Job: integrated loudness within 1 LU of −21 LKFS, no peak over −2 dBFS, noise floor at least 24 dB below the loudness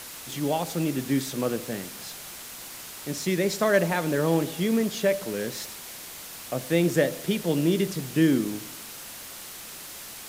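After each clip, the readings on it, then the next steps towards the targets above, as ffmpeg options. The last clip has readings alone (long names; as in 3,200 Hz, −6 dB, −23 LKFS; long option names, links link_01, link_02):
background noise floor −41 dBFS; target noise floor −51 dBFS; integrated loudness −26.5 LKFS; sample peak −8.5 dBFS; target loudness −21.0 LKFS
→ -af "afftdn=noise_reduction=10:noise_floor=-41"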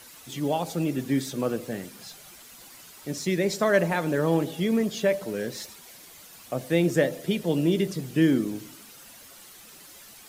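background noise floor −49 dBFS; target noise floor −50 dBFS
→ -af "afftdn=noise_reduction=6:noise_floor=-49"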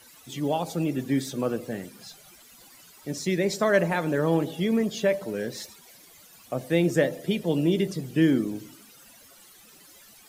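background noise floor −53 dBFS; integrated loudness −26.0 LKFS; sample peak −8.5 dBFS; target loudness −21.0 LKFS
→ -af "volume=5dB"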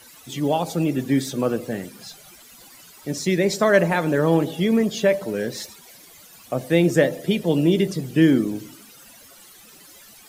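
integrated loudness −21.0 LKFS; sample peak −3.5 dBFS; background noise floor −48 dBFS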